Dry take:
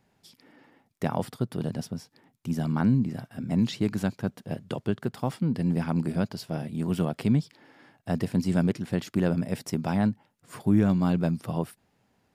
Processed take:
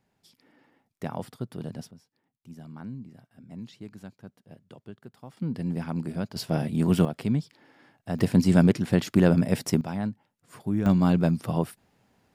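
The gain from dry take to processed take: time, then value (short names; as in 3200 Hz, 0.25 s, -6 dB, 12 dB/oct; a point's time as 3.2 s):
-5.5 dB
from 1.91 s -16 dB
from 5.37 s -4 dB
from 6.36 s +5.5 dB
from 7.05 s -2.5 dB
from 8.19 s +5.5 dB
from 9.81 s -5.5 dB
from 10.86 s +3 dB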